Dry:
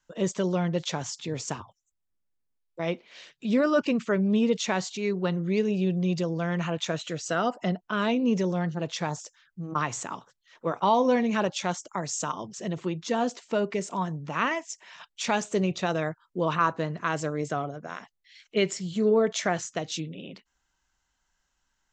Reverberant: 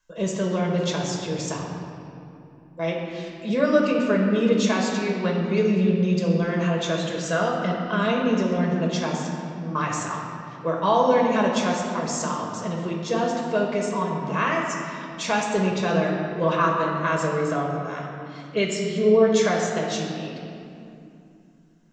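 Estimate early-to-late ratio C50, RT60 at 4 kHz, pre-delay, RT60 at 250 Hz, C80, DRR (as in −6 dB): 1.5 dB, 1.7 s, 5 ms, 3.7 s, 3.0 dB, −1.5 dB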